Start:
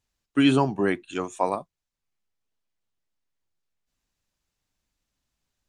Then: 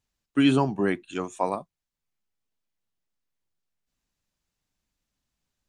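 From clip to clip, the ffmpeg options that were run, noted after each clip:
ffmpeg -i in.wav -af "equalizer=frequency=190:width=1.5:gain=3,volume=-2dB" out.wav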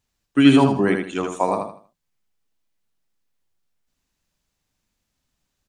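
ffmpeg -i in.wav -af "aecho=1:1:79|158|237|316:0.562|0.169|0.0506|0.0152,volume=5dB" out.wav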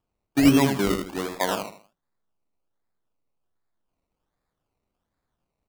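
ffmpeg -i in.wav -af "acrusher=samples=21:mix=1:aa=0.000001:lfo=1:lforange=12.6:lforate=1.3,volume=-4.5dB" out.wav

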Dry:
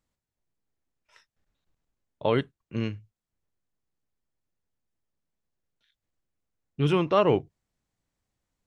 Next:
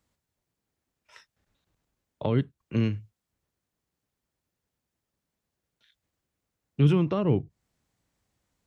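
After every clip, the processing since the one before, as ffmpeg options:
ffmpeg -i in.wav -filter_complex "[0:a]highpass=44,acrossover=split=270[link_01][link_02];[link_02]acompressor=threshold=-37dB:ratio=6[link_03];[link_01][link_03]amix=inputs=2:normalize=0,volume=6dB" out.wav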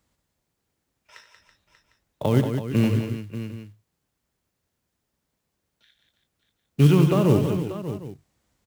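ffmpeg -i in.wav -af "acrusher=bits=6:mode=log:mix=0:aa=0.000001,aecho=1:1:75|93|183|329|587|753:0.211|0.237|0.422|0.251|0.251|0.119,volume=4.5dB" out.wav

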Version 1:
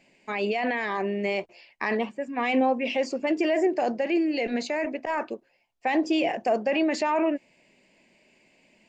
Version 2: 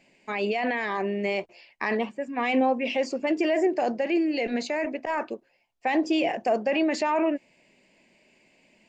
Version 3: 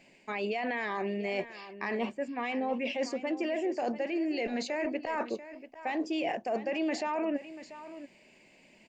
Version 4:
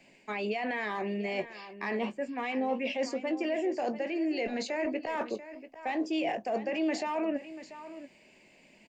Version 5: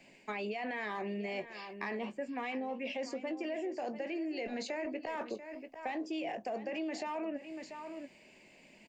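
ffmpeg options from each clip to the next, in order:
ffmpeg -i in.wav -af anull out.wav
ffmpeg -i in.wav -af "areverse,acompressor=threshold=-31dB:ratio=6,areverse,aecho=1:1:688:0.2,volume=1.5dB" out.wav
ffmpeg -i in.wav -filter_complex "[0:a]acrossover=split=270|850|1400[link_01][link_02][link_03][link_04];[link_03]asoftclip=type=hard:threshold=-39.5dB[link_05];[link_01][link_02][link_05][link_04]amix=inputs=4:normalize=0,asplit=2[link_06][link_07];[link_07]adelay=19,volume=-12dB[link_08];[link_06][link_08]amix=inputs=2:normalize=0" out.wav
ffmpeg -i in.wav -af "acompressor=threshold=-35dB:ratio=6" out.wav

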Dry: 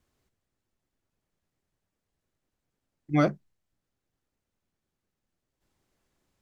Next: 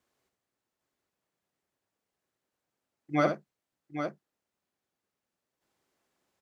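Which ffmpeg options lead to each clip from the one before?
ffmpeg -i in.wav -filter_complex "[0:a]highpass=frequency=760:poles=1,tiltshelf=frequency=1200:gain=3.5,asplit=2[link_01][link_02];[link_02]aecho=0:1:66|808:0.422|0.398[link_03];[link_01][link_03]amix=inputs=2:normalize=0,volume=1.5dB" out.wav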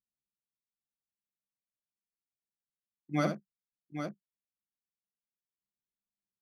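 ffmpeg -i in.wav -af "aemphasis=mode=production:type=75fm,anlmdn=0.00631,equalizer=frequency=190:width=1.6:gain=13.5,volume=-6.5dB" out.wav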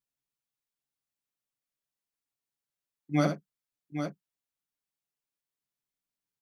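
ffmpeg -i in.wav -af "aecho=1:1:7.1:0.49,volume=2dB" out.wav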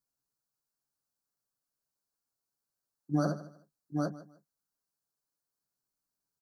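ffmpeg -i in.wav -af "acompressor=threshold=-27dB:ratio=5,asuperstop=centerf=2600:order=12:qfactor=1.1,aecho=1:1:153|306:0.141|0.0339,volume=2.5dB" out.wav

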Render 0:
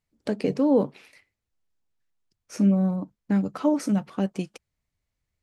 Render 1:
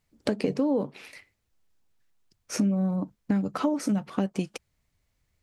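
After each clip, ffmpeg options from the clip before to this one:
ffmpeg -i in.wav -af "acompressor=threshold=-31dB:ratio=5,volume=7.5dB" out.wav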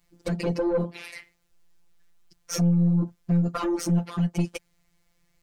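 ffmpeg -i in.wav -af "aeval=exprs='0.299*sin(PI/2*2.24*val(0)/0.299)':channel_layout=same,afftfilt=real='hypot(re,im)*cos(PI*b)':imag='0':win_size=1024:overlap=0.75,aeval=exprs='(tanh(6.31*val(0)+0.3)-tanh(0.3))/6.31':channel_layout=same" out.wav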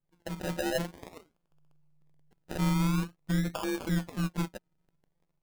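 ffmpeg -i in.wav -af "dynaudnorm=framelen=120:gausssize=7:maxgain=5dB,acrusher=samples=31:mix=1:aa=0.000001:lfo=1:lforange=18.6:lforate=0.48,tremolo=f=150:d=0.621,volume=-8.5dB" out.wav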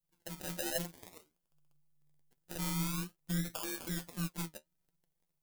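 ffmpeg -i in.wav -af "flanger=delay=5.5:depth=7.8:regen=48:speed=1.2:shape=sinusoidal,crystalizer=i=3.5:c=0,volume=-6dB" out.wav

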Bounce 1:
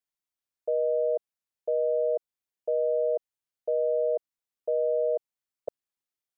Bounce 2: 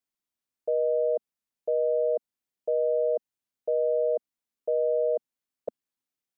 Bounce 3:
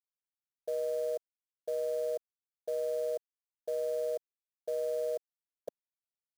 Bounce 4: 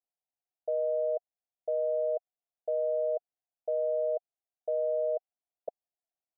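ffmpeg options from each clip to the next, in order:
ffmpeg -i in.wav -af "equalizer=frequency=240:width=1.7:gain=7.5" out.wav
ffmpeg -i in.wav -af "acrusher=bits=5:mode=log:mix=0:aa=0.000001,aeval=exprs='sgn(val(0))*max(abs(val(0))-0.00119,0)':channel_layout=same,volume=-8dB" out.wav
ffmpeg -i in.wav -af "lowpass=frequency=720:width_type=q:width=7.1,volume=-5dB" out.wav

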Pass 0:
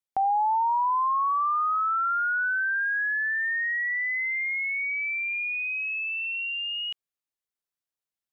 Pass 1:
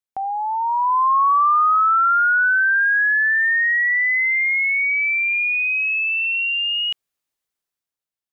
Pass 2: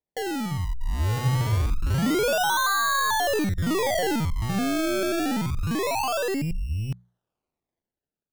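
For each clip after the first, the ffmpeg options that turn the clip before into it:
ffmpeg -i in.wav -af "dynaudnorm=framelen=190:gausssize=9:maxgain=11dB,volume=-1.5dB" out.wav
ffmpeg -i in.wav -af "acrusher=samples=31:mix=1:aa=0.000001:lfo=1:lforange=31:lforate=0.26,aeval=exprs='0.251*(cos(1*acos(clip(val(0)/0.251,-1,1)))-cos(1*PI/2))+0.0178*(cos(5*acos(clip(val(0)/0.251,-1,1)))-cos(5*PI/2))+0.0355*(cos(6*acos(clip(val(0)/0.251,-1,1)))-cos(6*PI/2))+0.02*(cos(8*acos(clip(val(0)/0.251,-1,1)))-cos(8*PI/2))':channel_layout=same,bandreject=frequency=60:width_type=h:width=6,bandreject=frequency=120:width_type=h:width=6,bandreject=frequency=180:width_type=h:width=6,volume=-6dB" out.wav

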